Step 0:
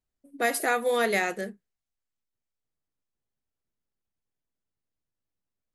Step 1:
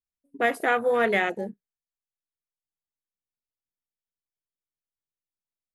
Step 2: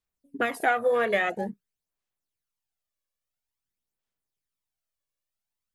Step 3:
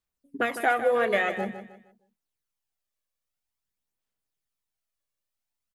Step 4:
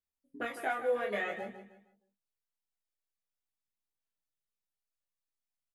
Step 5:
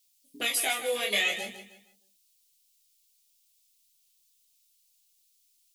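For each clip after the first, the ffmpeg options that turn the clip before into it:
ffmpeg -i in.wav -af "afwtdn=0.0224,volume=2.5dB" out.wav
ffmpeg -i in.wav -af "acompressor=threshold=-25dB:ratio=6,aphaser=in_gain=1:out_gain=1:delay=1.8:decay=0.52:speed=0.49:type=sinusoidal,volume=3dB" out.wav
ffmpeg -i in.wav -af "aecho=1:1:155|310|465|620:0.282|0.093|0.0307|0.0101" out.wav
ffmpeg -i in.wav -filter_complex "[0:a]asplit=2[link_01][link_02];[link_02]adelay=24,volume=-7dB[link_03];[link_01][link_03]amix=inputs=2:normalize=0,flanger=delay=15:depth=5.2:speed=0.53,volume=-7.5dB" out.wav
ffmpeg -i in.wav -af "aexciter=amount=8:drive=9:freq=2400" out.wav

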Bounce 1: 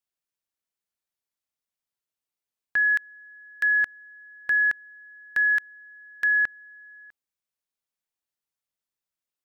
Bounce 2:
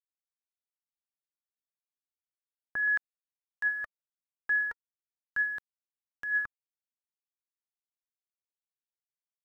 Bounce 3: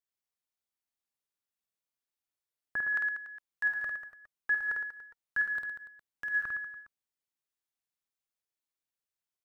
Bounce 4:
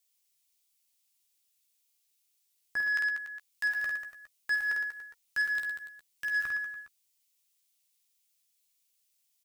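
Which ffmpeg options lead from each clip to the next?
ffmpeg -i in.wav -af "aeval=exprs='val(0)*gte(abs(val(0)),0.00891)':channel_layout=same,aphaser=in_gain=1:out_gain=1:delay=2.4:decay=0.54:speed=0.34:type=sinusoidal,highshelf=frequency=1700:width_type=q:width=1.5:gain=-9,volume=-7dB" out.wav
ffmpeg -i in.wav -af "aecho=1:1:50|112.5|190.6|288.3|410.4:0.631|0.398|0.251|0.158|0.1" out.wav
ffmpeg -i in.wav -filter_complex "[0:a]aexciter=amount=3.3:drive=7.8:freq=2200,asoftclip=type=tanh:threshold=-27dB,asplit=2[link_01][link_02];[link_02]adelay=13,volume=-7.5dB[link_03];[link_01][link_03]amix=inputs=2:normalize=0" out.wav

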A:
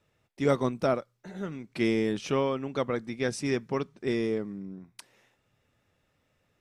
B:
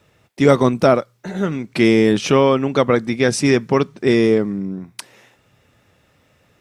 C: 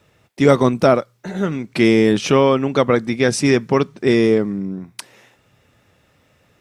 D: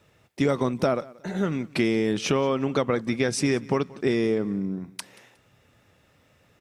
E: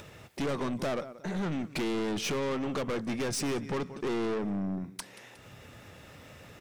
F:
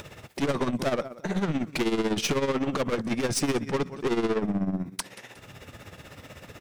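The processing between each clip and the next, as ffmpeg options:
ffmpeg -i in.wav -filter_complex "[0:a]highpass=43,asplit=2[link_01][link_02];[link_02]alimiter=limit=-20dB:level=0:latency=1:release=78,volume=2.5dB[link_03];[link_01][link_03]amix=inputs=2:normalize=0,volume=7.5dB" out.wav
ffmpeg -i in.wav -af anull out.wav
ffmpeg -i in.wav -af "acompressor=threshold=-16dB:ratio=6,aecho=1:1:181|362:0.0794|0.0222,volume=-3.5dB" out.wav
ffmpeg -i in.wav -af "acompressor=mode=upward:threshold=-40dB:ratio=2.5,aeval=exprs='(tanh(31.6*val(0)+0.2)-tanh(0.2))/31.6':channel_layout=same,volume=1dB" out.wav
ffmpeg -i in.wav -af "tremolo=f=16:d=0.69,volume=8dB" out.wav

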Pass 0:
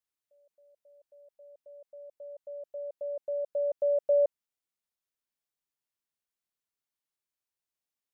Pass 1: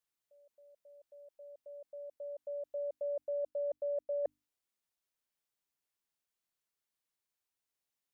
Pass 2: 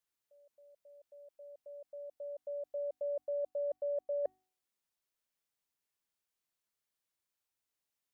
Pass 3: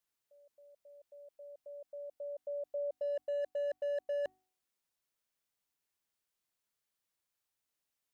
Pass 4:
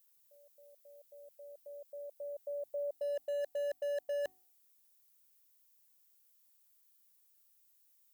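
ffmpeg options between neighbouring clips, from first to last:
ffmpeg -i in.wav -af "bandreject=frequency=50:width_type=h:width=6,bandreject=frequency=100:width_type=h:width=6,bandreject=frequency=150:width_type=h:width=6,bandreject=frequency=200:width_type=h:width=6,bandreject=frequency=250:width_type=h:width=6,bandreject=frequency=300:width_type=h:width=6,areverse,acompressor=threshold=-34dB:ratio=16,areverse,volume=1dB" out.wav
ffmpeg -i in.wav -af "bandreject=frequency=373.8:width_type=h:width=4,bandreject=frequency=747.6:width_type=h:width=4,bandreject=frequency=1121.4:width_type=h:width=4,bandreject=frequency=1495.2:width_type=h:width=4,bandreject=frequency=1869:width_type=h:width=4,bandreject=frequency=2242.8:width_type=h:width=4,bandreject=frequency=2616.6:width_type=h:width=4,bandreject=frequency=2990.4:width_type=h:width=4,bandreject=frequency=3364.2:width_type=h:width=4,bandreject=frequency=3738:width_type=h:width=4,bandreject=frequency=4111.8:width_type=h:width=4,bandreject=frequency=4485.6:width_type=h:width=4,bandreject=frequency=4859.4:width_type=h:width=4,bandreject=frequency=5233.2:width_type=h:width=4,bandreject=frequency=5607:width_type=h:width=4,bandreject=frequency=5980.8:width_type=h:width=4,bandreject=frequency=6354.6:width_type=h:width=4,bandreject=frequency=6728.4:width_type=h:width=4,bandreject=frequency=7102.2:width_type=h:width=4,bandreject=frequency=7476:width_type=h:width=4,bandreject=frequency=7849.8:width_type=h:width=4,bandreject=frequency=8223.6:width_type=h:width=4,bandreject=frequency=8597.4:width_type=h:width=4,bandreject=frequency=8971.2:width_type=h:width=4,bandreject=frequency=9345:width_type=h:width=4,bandreject=frequency=9718.8:width_type=h:width=4,bandreject=frequency=10092.6:width_type=h:width=4,bandreject=frequency=10466.4:width_type=h:width=4,bandreject=frequency=10840.2:width_type=h:width=4,bandreject=frequency=11214:width_type=h:width=4,bandreject=frequency=11587.8:width_type=h:width=4,bandreject=frequency=11961.6:width_type=h:width=4,bandreject=frequency=12335.4:width_type=h:width=4,bandreject=frequency=12709.2:width_type=h:width=4" out.wav
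ffmpeg -i in.wav -af "asoftclip=type=hard:threshold=-33dB,volume=1dB" out.wav
ffmpeg -i in.wav -af "aemphasis=mode=production:type=75fm" out.wav

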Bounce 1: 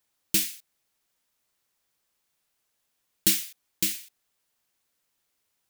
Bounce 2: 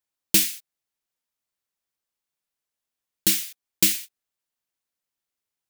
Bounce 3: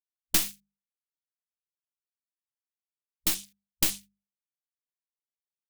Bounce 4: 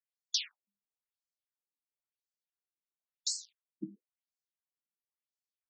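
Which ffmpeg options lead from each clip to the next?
ffmpeg -i in.wav -af "agate=range=-18dB:threshold=-41dB:ratio=16:detection=peak,alimiter=limit=-9.5dB:level=0:latency=1:release=469,volume=7.5dB" out.wav
ffmpeg -i in.wav -af "afwtdn=0.0158,aeval=exprs='0.841*(cos(1*acos(clip(val(0)/0.841,-1,1)))-cos(1*PI/2))+0.335*(cos(4*acos(clip(val(0)/0.841,-1,1)))-cos(4*PI/2))':channel_layout=same,bandreject=frequency=50:width_type=h:width=6,bandreject=frequency=100:width_type=h:width=6,bandreject=frequency=150:width_type=h:width=6,bandreject=frequency=200:width_type=h:width=6,volume=-8dB" out.wav
ffmpeg -i in.wav -af "afftfilt=real='re*between(b*sr/1024,240*pow(6000/240,0.5+0.5*sin(2*PI*0.97*pts/sr))/1.41,240*pow(6000/240,0.5+0.5*sin(2*PI*0.97*pts/sr))*1.41)':imag='im*between(b*sr/1024,240*pow(6000/240,0.5+0.5*sin(2*PI*0.97*pts/sr))/1.41,240*pow(6000/240,0.5+0.5*sin(2*PI*0.97*pts/sr))*1.41)':win_size=1024:overlap=0.75" out.wav

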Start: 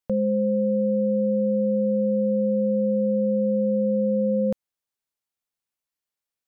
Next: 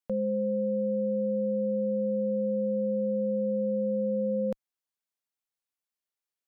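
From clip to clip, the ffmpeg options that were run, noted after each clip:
ffmpeg -i in.wav -af "equalizer=frequency=65:width_type=o:width=2.6:gain=-8.5,volume=-4.5dB" out.wav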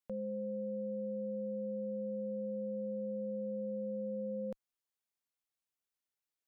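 ffmpeg -i in.wav -af "alimiter=level_in=6.5dB:limit=-24dB:level=0:latency=1:release=24,volume=-6.5dB,volume=-2.5dB" out.wav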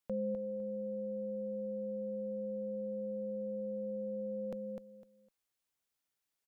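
ffmpeg -i in.wav -af "aecho=1:1:253|506|759:0.562|0.124|0.0272,volume=3.5dB" out.wav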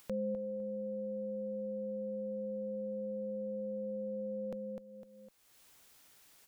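ffmpeg -i in.wav -af "acompressor=mode=upward:threshold=-42dB:ratio=2.5" out.wav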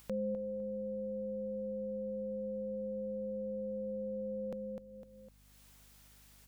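ffmpeg -i in.wav -af "aeval=exprs='val(0)+0.000708*(sin(2*PI*50*n/s)+sin(2*PI*2*50*n/s)/2+sin(2*PI*3*50*n/s)/3+sin(2*PI*4*50*n/s)/4+sin(2*PI*5*50*n/s)/5)':channel_layout=same" out.wav

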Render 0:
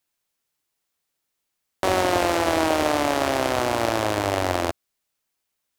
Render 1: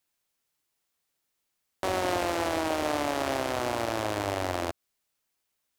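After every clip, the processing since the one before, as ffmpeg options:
ffmpeg -i in.wav -af "alimiter=limit=-14dB:level=0:latency=1:release=122,volume=-1dB" out.wav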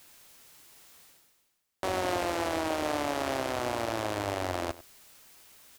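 ffmpeg -i in.wav -af "areverse,acompressor=mode=upward:threshold=-32dB:ratio=2.5,areverse,aecho=1:1:97:0.133,volume=-2dB" out.wav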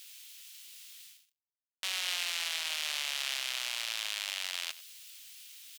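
ffmpeg -i in.wav -af "acrusher=bits=8:mix=0:aa=0.5,highpass=frequency=3000:width_type=q:width=1.8,volume=3.5dB" out.wav

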